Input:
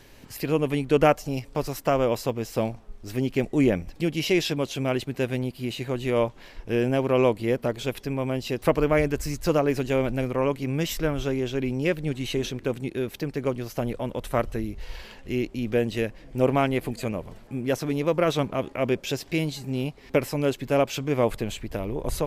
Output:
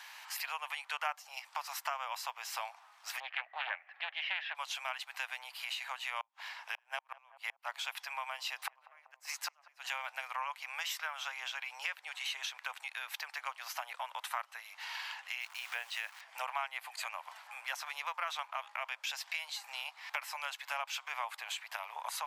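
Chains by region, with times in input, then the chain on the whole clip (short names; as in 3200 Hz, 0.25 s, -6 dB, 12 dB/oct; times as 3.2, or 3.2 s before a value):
3.2–4.55 speaker cabinet 120–2700 Hz, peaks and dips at 150 Hz +4 dB, 220 Hz -5 dB, 630 Hz +6 dB, 950 Hz -9 dB, 1800 Hz +9 dB + Doppler distortion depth 0.38 ms
6.2–9.88 flipped gate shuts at -14 dBFS, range -39 dB + darkening echo 0.192 s, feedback 75%, low-pass 1200 Hz, level -22.5 dB
15.41–16.21 requantised 8-bit, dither none + bell 170 Hz -5 dB 1.8 oct
whole clip: steep high-pass 820 Hz 48 dB/oct; high shelf 4600 Hz -7.5 dB; compressor 3:1, threshold -46 dBFS; gain +7.5 dB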